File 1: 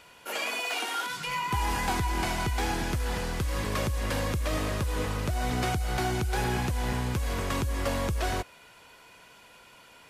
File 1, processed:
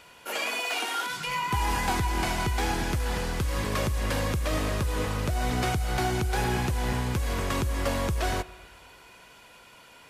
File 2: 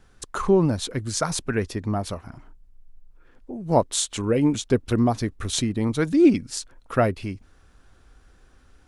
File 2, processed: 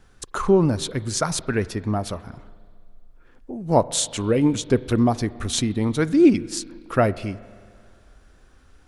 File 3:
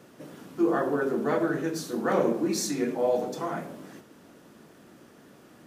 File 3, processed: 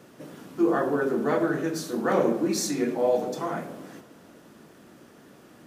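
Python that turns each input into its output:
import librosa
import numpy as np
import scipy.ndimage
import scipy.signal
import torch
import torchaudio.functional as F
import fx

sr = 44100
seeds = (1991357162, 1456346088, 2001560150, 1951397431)

y = fx.rev_spring(x, sr, rt60_s=2.1, pass_ms=(38, 46), chirp_ms=20, drr_db=17.5)
y = y * 10.0 ** (1.5 / 20.0)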